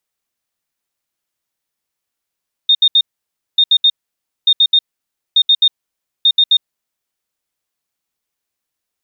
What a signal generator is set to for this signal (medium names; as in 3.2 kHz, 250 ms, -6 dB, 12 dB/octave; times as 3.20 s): beep pattern sine 3.67 kHz, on 0.06 s, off 0.07 s, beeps 3, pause 0.57 s, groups 5, -6.5 dBFS